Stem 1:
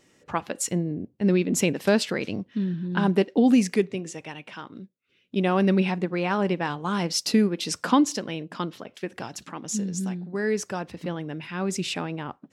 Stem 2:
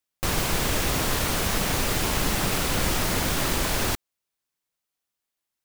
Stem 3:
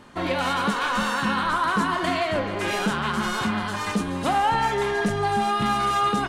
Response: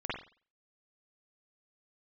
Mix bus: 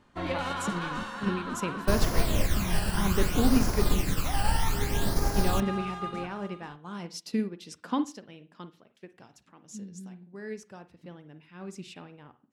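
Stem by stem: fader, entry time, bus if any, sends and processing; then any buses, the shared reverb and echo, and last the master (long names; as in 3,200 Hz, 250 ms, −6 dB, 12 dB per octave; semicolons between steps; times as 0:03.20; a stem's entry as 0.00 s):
−7.5 dB, 0.00 s, send −13.5 dB, no echo send, no processing
−3.0 dB, 1.65 s, no send, no echo send, all-pass phaser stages 12, 0.62 Hz, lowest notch 370–3,100 Hz
−0.5 dB, 0.00 s, send −23 dB, echo send −19.5 dB, high-shelf EQ 11,000 Hz −10.5 dB; automatic ducking −11 dB, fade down 1.95 s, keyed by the first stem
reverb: on, pre-delay 45 ms
echo: single-tap delay 486 ms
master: low-shelf EQ 88 Hz +9.5 dB; expander for the loud parts 1.5 to 1, over −43 dBFS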